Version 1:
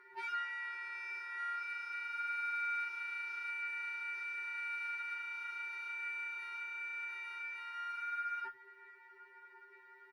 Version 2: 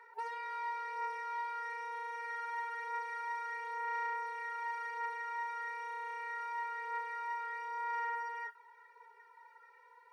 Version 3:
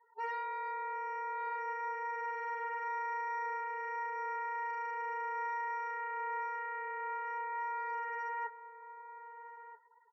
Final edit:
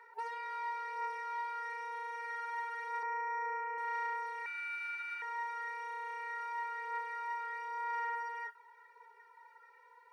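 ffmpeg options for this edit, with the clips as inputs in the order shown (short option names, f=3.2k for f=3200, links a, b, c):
-filter_complex "[1:a]asplit=3[a][b][c];[a]atrim=end=3.032[d];[2:a]atrim=start=3.028:end=3.782[e];[b]atrim=start=3.778:end=4.462[f];[0:a]atrim=start=4.458:end=5.222[g];[c]atrim=start=5.218[h];[d][e]acrossfade=d=0.004:c1=hsin:c2=hsin[i];[i][f]acrossfade=d=0.004:c1=hsin:c2=hsin[j];[j][g]acrossfade=d=0.004:c1=hsin:c2=hsin[k];[k][h]acrossfade=d=0.004:c1=hsin:c2=hsin"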